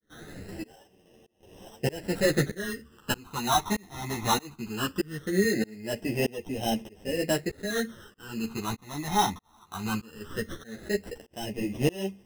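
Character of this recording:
aliases and images of a low sample rate 2,300 Hz, jitter 0%
phaser sweep stages 12, 0.19 Hz, lowest notch 500–1,400 Hz
tremolo saw up 1.6 Hz, depth 100%
a shimmering, thickened sound

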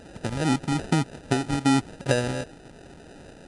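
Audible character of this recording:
a quantiser's noise floor 8 bits, dither triangular
phaser sweep stages 2, 2.5 Hz, lowest notch 630–2,000 Hz
aliases and images of a low sample rate 1,100 Hz, jitter 0%
MP3

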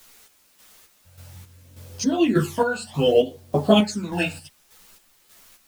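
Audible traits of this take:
phaser sweep stages 12, 0.64 Hz, lowest notch 340–2,700 Hz
a quantiser's noise floor 10 bits, dither triangular
chopped level 1.7 Hz, depth 60%, duty 45%
a shimmering, thickened sound

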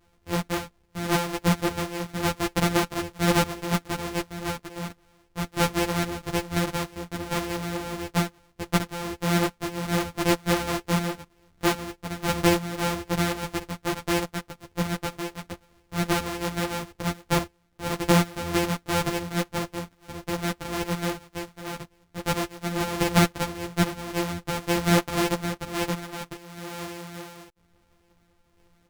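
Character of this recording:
a buzz of ramps at a fixed pitch in blocks of 256 samples
sample-and-hold tremolo
a shimmering, thickened sound

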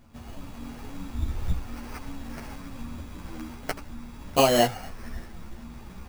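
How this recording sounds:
aliases and images of a low sample rate 3,600 Hz, jitter 0%
a shimmering, thickened sound

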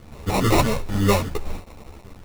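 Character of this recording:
a quantiser's noise floor 8 bits, dither none
phaser sweep stages 2, 1 Hz, lowest notch 360–1,700 Hz
aliases and images of a low sample rate 1,600 Hz, jitter 0%
a shimmering, thickened sound

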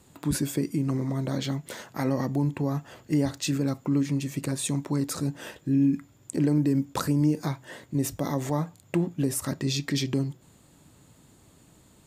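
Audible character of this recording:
background noise floor −58 dBFS
spectral slope −6.0 dB per octave

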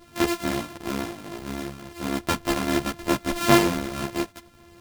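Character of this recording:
a buzz of ramps at a fixed pitch in blocks of 128 samples
tremolo triangle 1.5 Hz, depth 40%
a shimmering, thickened sound

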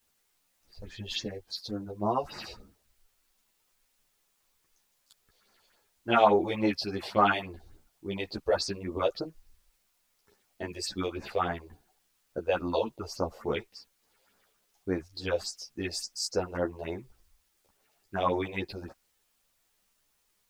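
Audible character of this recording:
phaser sweep stages 4, 3.5 Hz, lowest notch 200–3,300 Hz
a quantiser's noise floor 12 bits, dither triangular
a shimmering, thickened sound

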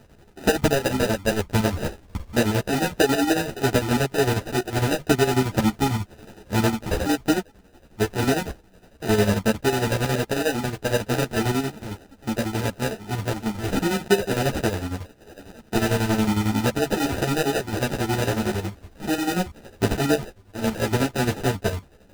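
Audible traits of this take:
aliases and images of a low sample rate 1,100 Hz, jitter 0%
chopped level 11 Hz, depth 60%, duty 55%
a shimmering, thickened sound

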